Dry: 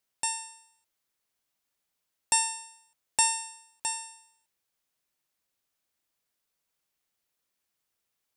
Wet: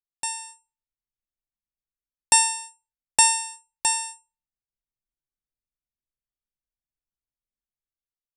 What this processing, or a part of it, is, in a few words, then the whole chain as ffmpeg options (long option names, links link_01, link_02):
voice memo with heavy noise removal: -af "anlmdn=0.00631,dynaudnorm=framelen=120:gausssize=11:maxgain=12dB"